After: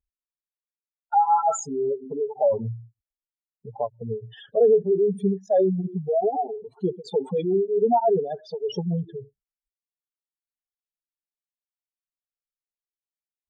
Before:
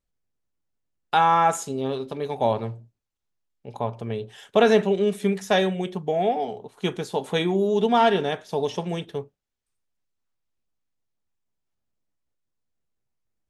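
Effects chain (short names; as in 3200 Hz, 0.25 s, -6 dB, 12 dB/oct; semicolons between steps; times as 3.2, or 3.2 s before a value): spectral contrast raised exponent 3.8; in parallel at -3 dB: limiter -21 dBFS, peak gain reduction 11.5 dB; on the sum: tape flanging out of phase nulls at 0.64 Hz, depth 5.9 ms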